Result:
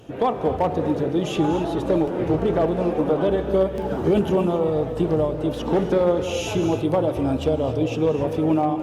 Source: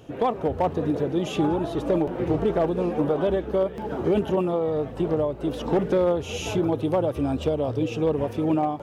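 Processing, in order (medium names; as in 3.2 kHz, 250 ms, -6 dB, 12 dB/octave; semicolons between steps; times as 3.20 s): de-hum 72.76 Hz, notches 36; 3.38–5.35 s: tone controls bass +3 dB, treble +4 dB; gated-style reverb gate 300 ms rising, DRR 9 dB; trim +2.5 dB; Opus 64 kbps 48 kHz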